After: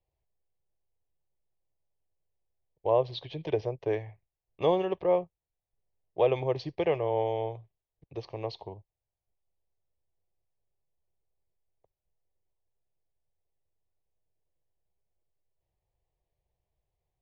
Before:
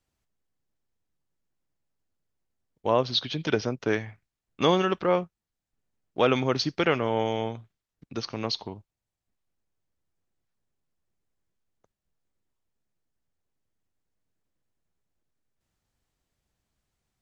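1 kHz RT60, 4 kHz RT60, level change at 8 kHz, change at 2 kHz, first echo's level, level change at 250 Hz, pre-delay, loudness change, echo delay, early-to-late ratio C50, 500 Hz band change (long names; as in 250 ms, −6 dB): no reverb audible, no reverb audible, can't be measured, −12.5 dB, no echo audible, −8.0 dB, no reverb audible, −3.5 dB, no echo audible, no reverb audible, −1.0 dB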